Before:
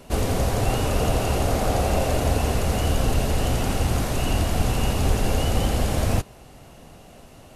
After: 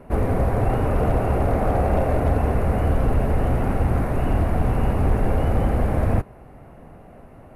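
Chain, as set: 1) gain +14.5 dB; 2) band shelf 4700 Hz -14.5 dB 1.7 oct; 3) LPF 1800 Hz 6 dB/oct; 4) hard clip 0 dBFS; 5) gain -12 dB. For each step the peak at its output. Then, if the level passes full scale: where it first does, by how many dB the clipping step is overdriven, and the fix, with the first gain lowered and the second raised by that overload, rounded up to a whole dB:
+6.5, +6.5, +6.0, 0.0, -12.0 dBFS; step 1, 6.0 dB; step 1 +8.5 dB, step 5 -6 dB

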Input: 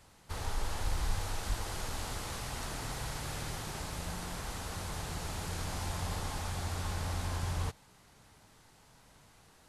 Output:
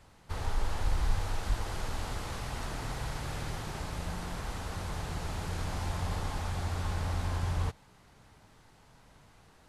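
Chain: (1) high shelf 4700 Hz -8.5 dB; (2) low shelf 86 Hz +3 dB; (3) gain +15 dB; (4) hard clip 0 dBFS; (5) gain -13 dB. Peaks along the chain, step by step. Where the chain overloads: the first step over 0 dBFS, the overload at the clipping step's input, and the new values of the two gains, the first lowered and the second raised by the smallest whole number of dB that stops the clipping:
-21.0, -18.5, -3.5, -3.5, -16.5 dBFS; no overload

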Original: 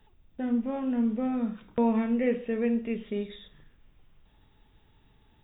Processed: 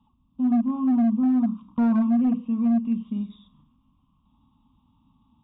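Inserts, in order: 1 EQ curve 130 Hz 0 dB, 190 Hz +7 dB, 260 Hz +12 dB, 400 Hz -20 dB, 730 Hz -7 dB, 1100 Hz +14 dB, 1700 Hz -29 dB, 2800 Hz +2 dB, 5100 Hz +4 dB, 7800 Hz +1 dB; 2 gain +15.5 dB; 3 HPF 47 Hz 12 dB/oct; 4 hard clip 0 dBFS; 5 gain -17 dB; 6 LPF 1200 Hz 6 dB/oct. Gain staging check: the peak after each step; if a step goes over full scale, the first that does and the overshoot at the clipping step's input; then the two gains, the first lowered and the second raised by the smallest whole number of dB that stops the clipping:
-8.5, +7.0, +7.0, 0.0, -17.0, -17.0 dBFS; step 2, 7.0 dB; step 2 +8.5 dB, step 5 -10 dB

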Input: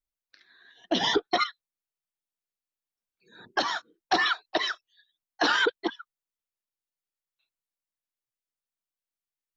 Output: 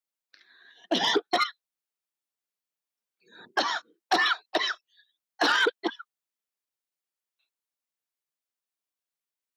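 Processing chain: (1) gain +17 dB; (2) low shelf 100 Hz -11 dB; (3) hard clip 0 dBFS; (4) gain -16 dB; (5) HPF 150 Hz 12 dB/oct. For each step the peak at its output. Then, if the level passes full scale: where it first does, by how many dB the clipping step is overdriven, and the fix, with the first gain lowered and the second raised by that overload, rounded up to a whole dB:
+4.5, +4.5, 0.0, -16.0, -13.0 dBFS; step 1, 4.5 dB; step 1 +12 dB, step 4 -11 dB

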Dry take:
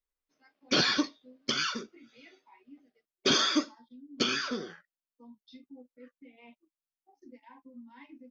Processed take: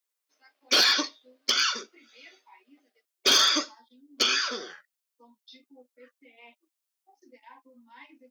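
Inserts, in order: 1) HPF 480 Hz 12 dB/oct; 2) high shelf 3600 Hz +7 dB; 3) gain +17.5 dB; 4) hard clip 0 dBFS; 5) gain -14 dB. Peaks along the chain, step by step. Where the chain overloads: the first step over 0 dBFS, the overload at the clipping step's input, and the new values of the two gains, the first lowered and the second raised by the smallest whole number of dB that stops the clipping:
-14.5, -11.0, +6.5, 0.0, -14.0 dBFS; step 3, 6.5 dB; step 3 +10.5 dB, step 5 -7 dB

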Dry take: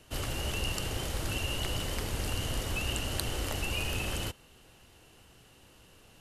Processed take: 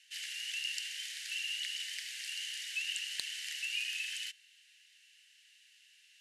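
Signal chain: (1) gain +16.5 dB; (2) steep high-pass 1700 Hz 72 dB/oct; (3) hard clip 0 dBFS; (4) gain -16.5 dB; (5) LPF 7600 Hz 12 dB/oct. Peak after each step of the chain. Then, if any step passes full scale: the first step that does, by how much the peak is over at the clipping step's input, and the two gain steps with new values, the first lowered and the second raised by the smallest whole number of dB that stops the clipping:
+4.5, +6.5, 0.0, -16.5, -17.0 dBFS; step 1, 6.5 dB; step 1 +9.5 dB, step 4 -9.5 dB

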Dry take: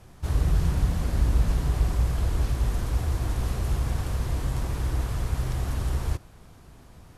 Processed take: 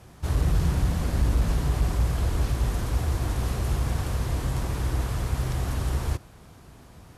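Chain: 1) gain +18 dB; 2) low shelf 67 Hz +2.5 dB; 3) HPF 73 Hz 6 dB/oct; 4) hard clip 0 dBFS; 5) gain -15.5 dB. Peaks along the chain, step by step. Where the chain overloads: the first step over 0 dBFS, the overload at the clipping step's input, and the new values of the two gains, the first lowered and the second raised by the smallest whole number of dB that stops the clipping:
+7.0, +8.0, +5.0, 0.0, -15.5 dBFS; step 1, 5.0 dB; step 1 +13 dB, step 5 -10.5 dB

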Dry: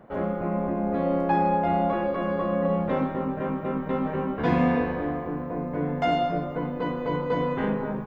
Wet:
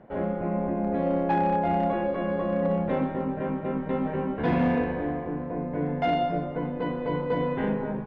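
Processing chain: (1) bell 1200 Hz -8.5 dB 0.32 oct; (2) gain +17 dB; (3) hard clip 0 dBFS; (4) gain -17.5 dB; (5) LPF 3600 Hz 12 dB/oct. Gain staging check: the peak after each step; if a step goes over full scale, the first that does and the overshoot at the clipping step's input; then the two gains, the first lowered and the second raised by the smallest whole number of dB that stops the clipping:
-9.0, +8.0, 0.0, -17.5, -17.0 dBFS; step 2, 8.0 dB; step 2 +9 dB, step 4 -9.5 dB

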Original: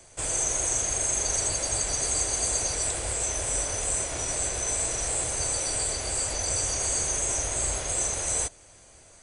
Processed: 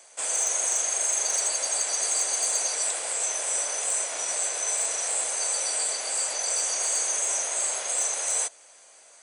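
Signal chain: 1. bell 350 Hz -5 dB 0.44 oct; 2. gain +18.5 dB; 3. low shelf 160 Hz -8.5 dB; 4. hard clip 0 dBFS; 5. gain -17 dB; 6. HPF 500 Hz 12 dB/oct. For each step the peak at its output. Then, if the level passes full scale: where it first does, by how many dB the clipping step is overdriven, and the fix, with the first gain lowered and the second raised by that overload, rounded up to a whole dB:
-13.0, +5.5, +5.0, 0.0, -17.0, -15.0 dBFS; step 2, 5.0 dB; step 2 +13.5 dB, step 5 -12 dB

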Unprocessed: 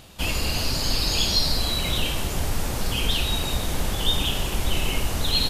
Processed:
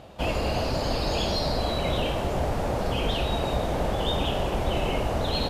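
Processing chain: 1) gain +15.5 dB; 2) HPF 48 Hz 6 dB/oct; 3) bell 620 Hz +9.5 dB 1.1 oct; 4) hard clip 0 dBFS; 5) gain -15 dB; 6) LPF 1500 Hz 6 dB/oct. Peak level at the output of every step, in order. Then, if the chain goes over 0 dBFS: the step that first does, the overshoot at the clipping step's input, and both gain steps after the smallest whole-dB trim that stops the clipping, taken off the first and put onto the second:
+7.5, +5.0, +6.0, 0.0, -15.0, -15.0 dBFS; step 1, 6.0 dB; step 1 +9.5 dB, step 5 -9 dB

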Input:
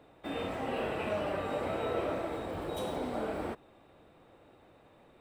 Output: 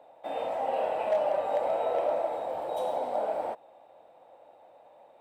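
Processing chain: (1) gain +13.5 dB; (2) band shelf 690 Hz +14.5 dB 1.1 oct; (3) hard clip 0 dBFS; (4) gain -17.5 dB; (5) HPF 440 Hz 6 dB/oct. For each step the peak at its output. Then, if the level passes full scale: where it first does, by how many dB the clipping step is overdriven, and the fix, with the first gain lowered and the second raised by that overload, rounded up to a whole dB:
-7.5, +3.5, 0.0, -17.5, -16.5 dBFS; step 2, 3.5 dB; step 1 +9.5 dB, step 4 -13.5 dB

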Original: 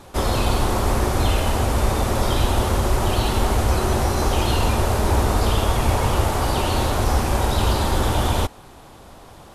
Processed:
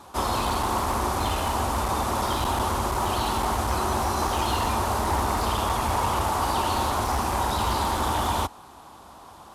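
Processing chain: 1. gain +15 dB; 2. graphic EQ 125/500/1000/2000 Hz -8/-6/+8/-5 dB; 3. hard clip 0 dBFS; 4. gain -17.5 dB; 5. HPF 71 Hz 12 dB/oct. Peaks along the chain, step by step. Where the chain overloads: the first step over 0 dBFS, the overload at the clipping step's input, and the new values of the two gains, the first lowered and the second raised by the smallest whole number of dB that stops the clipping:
+9.0, +8.5, 0.0, -17.5, -12.5 dBFS; step 1, 8.5 dB; step 1 +6 dB, step 4 -8.5 dB

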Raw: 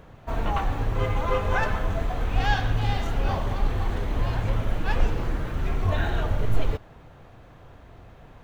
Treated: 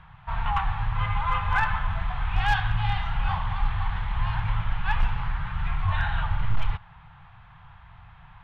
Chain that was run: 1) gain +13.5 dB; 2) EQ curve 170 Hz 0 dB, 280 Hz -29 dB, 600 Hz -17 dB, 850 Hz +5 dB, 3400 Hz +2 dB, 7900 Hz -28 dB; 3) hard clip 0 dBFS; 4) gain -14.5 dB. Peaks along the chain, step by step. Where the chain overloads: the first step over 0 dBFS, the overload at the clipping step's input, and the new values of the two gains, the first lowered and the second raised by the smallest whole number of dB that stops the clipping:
+5.0, +5.5, 0.0, -14.5 dBFS; step 1, 5.5 dB; step 1 +7.5 dB, step 4 -8.5 dB

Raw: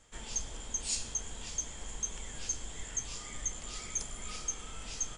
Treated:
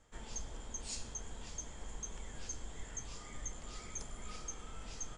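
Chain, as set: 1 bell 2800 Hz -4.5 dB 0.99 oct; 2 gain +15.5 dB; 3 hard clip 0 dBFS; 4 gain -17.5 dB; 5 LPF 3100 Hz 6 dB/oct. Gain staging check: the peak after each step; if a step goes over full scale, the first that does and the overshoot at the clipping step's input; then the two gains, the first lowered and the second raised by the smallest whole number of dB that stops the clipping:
-20.5, -5.0, -5.0, -22.5, -29.0 dBFS; no overload

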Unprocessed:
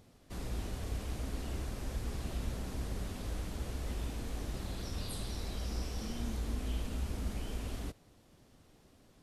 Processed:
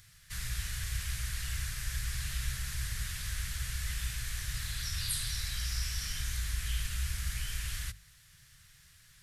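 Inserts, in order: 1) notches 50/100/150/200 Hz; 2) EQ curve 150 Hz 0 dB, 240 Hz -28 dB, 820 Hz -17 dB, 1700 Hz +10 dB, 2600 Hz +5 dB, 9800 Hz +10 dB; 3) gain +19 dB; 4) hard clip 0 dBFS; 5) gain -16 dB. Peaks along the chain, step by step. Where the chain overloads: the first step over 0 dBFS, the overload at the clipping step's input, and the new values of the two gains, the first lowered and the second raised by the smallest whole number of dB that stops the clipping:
-25.5, -24.5, -5.5, -5.5, -21.5 dBFS; no overload

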